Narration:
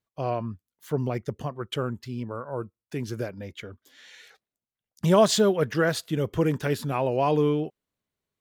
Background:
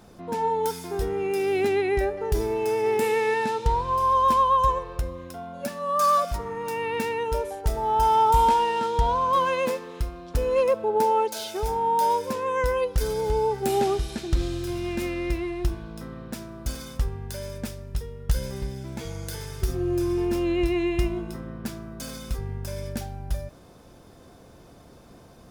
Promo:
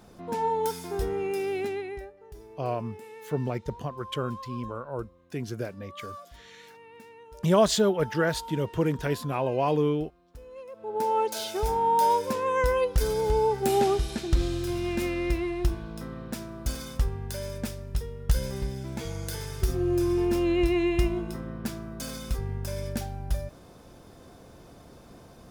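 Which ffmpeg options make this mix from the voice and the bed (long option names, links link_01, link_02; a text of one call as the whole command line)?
ffmpeg -i stem1.wav -i stem2.wav -filter_complex "[0:a]adelay=2400,volume=-2dB[link_01];[1:a]volume=20dB,afade=type=out:start_time=1.13:duration=0.99:silence=0.1,afade=type=in:start_time=10.72:duration=0.66:silence=0.0794328[link_02];[link_01][link_02]amix=inputs=2:normalize=0" out.wav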